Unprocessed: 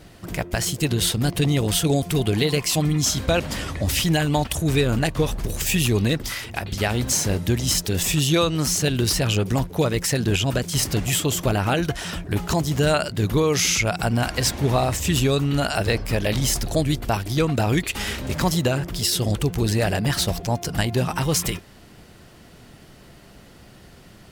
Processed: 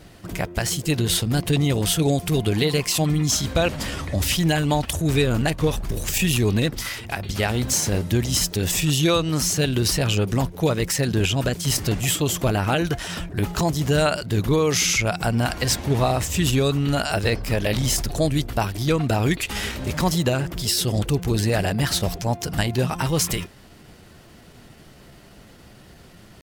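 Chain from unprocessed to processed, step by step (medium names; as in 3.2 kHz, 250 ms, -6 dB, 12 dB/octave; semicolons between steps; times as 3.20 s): tempo 0.92×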